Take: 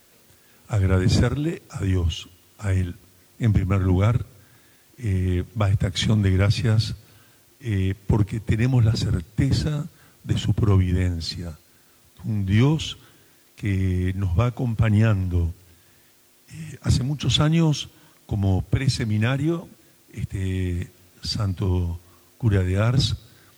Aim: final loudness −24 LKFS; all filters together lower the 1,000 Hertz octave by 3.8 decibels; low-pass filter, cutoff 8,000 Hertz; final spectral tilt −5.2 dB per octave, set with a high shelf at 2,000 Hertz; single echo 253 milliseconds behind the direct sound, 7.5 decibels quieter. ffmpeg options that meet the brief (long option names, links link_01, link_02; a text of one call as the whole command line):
ffmpeg -i in.wav -af "lowpass=8000,equalizer=frequency=1000:width_type=o:gain=-8.5,highshelf=frequency=2000:gain=8.5,aecho=1:1:253:0.422,volume=-2dB" out.wav